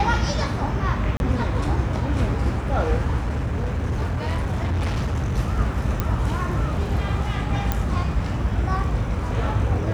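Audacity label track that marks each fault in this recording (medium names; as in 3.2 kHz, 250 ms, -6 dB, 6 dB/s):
1.170000	1.200000	dropout 31 ms
3.190000	5.390000	clipped -20 dBFS
6.000000	6.000000	pop -9 dBFS
7.720000	7.720000	pop -8 dBFS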